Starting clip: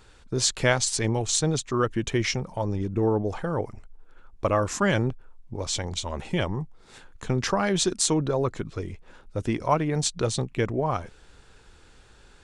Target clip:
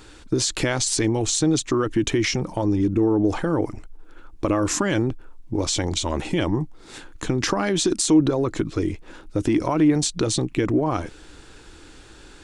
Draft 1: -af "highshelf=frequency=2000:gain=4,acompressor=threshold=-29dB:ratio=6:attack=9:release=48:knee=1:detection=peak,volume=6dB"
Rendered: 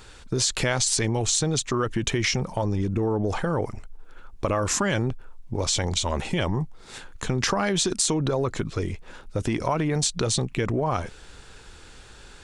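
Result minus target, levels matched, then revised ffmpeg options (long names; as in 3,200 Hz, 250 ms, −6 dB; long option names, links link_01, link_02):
250 Hz band −4.5 dB
-af "highshelf=frequency=2000:gain=4,acompressor=threshold=-29dB:ratio=6:attack=9:release=48:knee=1:detection=peak,equalizer=frequency=310:width=3.8:gain=13,volume=6dB"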